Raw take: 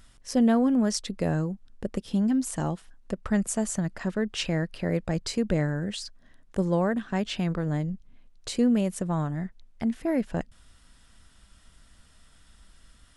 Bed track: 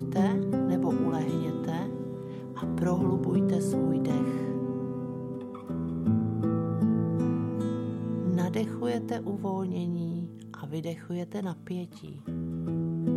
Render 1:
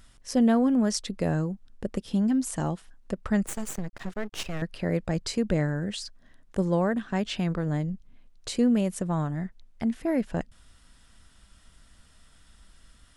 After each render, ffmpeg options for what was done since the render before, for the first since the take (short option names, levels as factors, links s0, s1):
-filter_complex "[0:a]asettb=1/sr,asplit=3[s0][s1][s2];[s0]atrim=end=3.464[s3];[s1]atrim=start=3.46:end=4.62,asetpts=PTS-STARTPTS,afade=t=in:d=0.004:c=qsin,afade=t=out:st=1.156:d=0.004:c=qsin,aeval=exprs='max(val(0),0)':c=same[s4];[s2]atrim=start=4.616[s5];[s3][s4]acrossfade=d=0.004:c1=hsin:c2=qsin[s6];[s6][s5]acrossfade=d=0.004:c1=qsin:c2=hsin"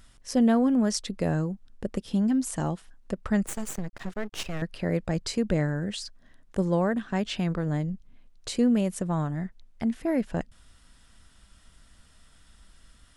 -af anull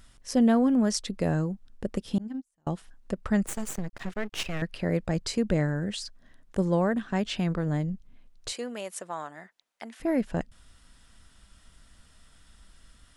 -filter_complex "[0:a]asettb=1/sr,asplit=3[s0][s1][s2];[s0]atrim=end=2.184[s3];[s1]atrim=start=2.18:end=2.67,asetpts=PTS-STARTPTS,afade=t=in:d=0.004:c=qsin,afade=t=out:st=0.486:d=0.004:c=qsin,agate=range=0.00708:threshold=0.0794:ratio=16:release=100:detection=peak[s4];[s2]atrim=start=2.666[s5];[s3][s4]acrossfade=d=0.004:c1=hsin:c2=qsin[s6];[s6][s5]acrossfade=d=0.004:c1=qsin:c2=hsin,asettb=1/sr,asplit=3[s7][s8][s9];[s7]atrim=end=4.024[s10];[s8]atrim=start=4.02:end=4.77,asetpts=PTS-STARTPTS,afade=t=in:d=0.004:c=qsin,afade=t=out:st=0.746:d=0.004:c=qsin,equalizer=f=2400:t=o:w=1.1:g=4.5[s11];[s9]atrim=start=4.766[s12];[s10][s11]acrossfade=d=0.004:c1=hsin:c2=qsin[s13];[s13][s12]acrossfade=d=0.004:c1=qsin:c2=hsin,asettb=1/sr,asplit=3[s14][s15][s16];[s14]atrim=end=8.524[s17];[s15]atrim=start=8.52:end=10,asetpts=PTS-STARTPTS,afade=t=in:d=0.004:c=qsin,afade=t=out:st=1.476:d=0.004:c=qsin,highpass=660[s18];[s16]atrim=start=9.996[s19];[s17][s18]acrossfade=d=0.004:c1=hsin:c2=qsin[s20];[s20][s19]acrossfade=d=0.004:c1=qsin:c2=hsin"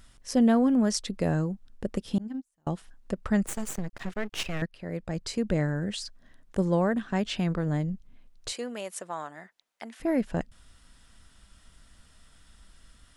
-filter_complex "[0:a]asplit=2[s0][s1];[s0]atrim=end=4.66,asetpts=PTS-STARTPTS,afade=t=out:st=4.656:d=0.004:c=hsin:silence=0.16788[s2];[s1]atrim=start=4.66,asetpts=PTS-STARTPTS,afade=t=in:d=1.39:c=qsin:silence=0.16788[s3];[s2][s3]concat=n=2:v=0:a=1"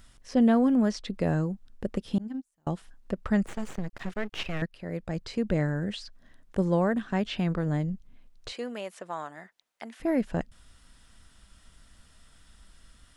-filter_complex "[0:a]acrossover=split=4400[s0][s1];[s1]acompressor=threshold=0.00178:ratio=4:attack=1:release=60[s2];[s0][s2]amix=inputs=2:normalize=0"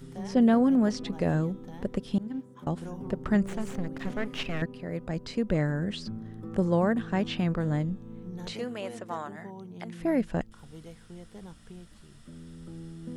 -filter_complex "[1:a]volume=0.237[s0];[0:a][s0]amix=inputs=2:normalize=0"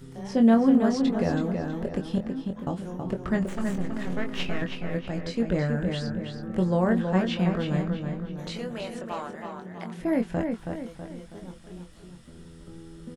-filter_complex "[0:a]asplit=2[s0][s1];[s1]adelay=22,volume=0.531[s2];[s0][s2]amix=inputs=2:normalize=0,asplit=2[s3][s4];[s4]adelay=324,lowpass=f=4300:p=1,volume=0.562,asplit=2[s5][s6];[s6]adelay=324,lowpass=f=4300:p=1,volume=0.46,asplit=2[s7][s8];[s8]adelay=324,lowpass=f=4300:p=1,volume=0.46,asplit=2[s9][s10];[s10]adelay=324,lowpass=f=4300:p=1,volume=0.46,asplit=2[s11][s12];[s12]adelay=324,lowpass=f=4300:p=1,volume=0.46,asplit=2[s13][s14];[s14]adelay=324,lowpass=f=4300:p=1,volume=0.46[s15];[s5][s7][s9][s11][s13][s15]amix=inputs=6:normalize=0[s16];[s3][s16]amix=inputs=2:normalize=0"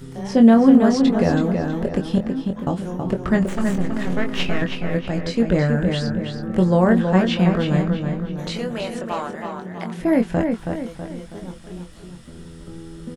-af "volume=2.37,alimiter=limit=0.708:level=0:latency=1"